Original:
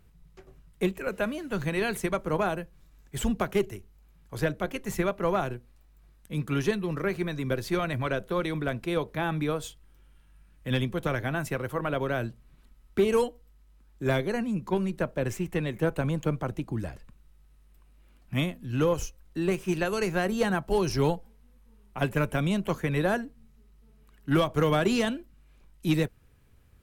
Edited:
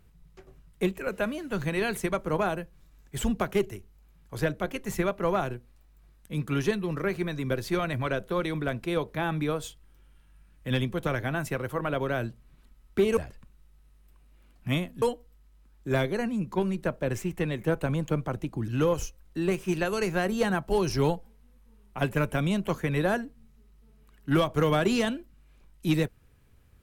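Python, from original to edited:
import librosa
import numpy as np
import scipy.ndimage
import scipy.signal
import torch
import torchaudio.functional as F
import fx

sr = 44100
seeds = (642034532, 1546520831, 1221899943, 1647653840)

y = fx.edit(x, sr, fx.move(start_s=16.83, length_s=1.85, to_s=13.17), tone=tone)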